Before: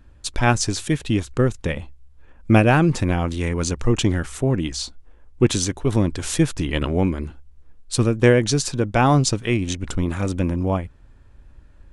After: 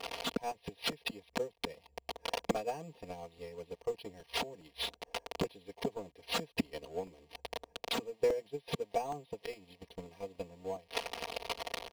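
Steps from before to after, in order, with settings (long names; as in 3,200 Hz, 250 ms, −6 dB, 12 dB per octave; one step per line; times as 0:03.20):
spike at every zero crossing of −12.5 dBFS
bad sample-rate conversion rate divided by 6×, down filtered, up hold
gate with flip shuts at −20 dBFS, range −25 dB
phaser with its sweep stopped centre 580 Hz, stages 4
wave folding −33 dBFS
high-pass filter 170 Hz 12 dB per octave
transient designer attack +12 dB, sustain −3 dB
low-pass filter 1,900 Hz 6 dB per octave
comb filter 4.3 ms, depth 99%
regular buffer underruns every 0.41 s, samples 128, repeat, from 0:00.51
level +3 dB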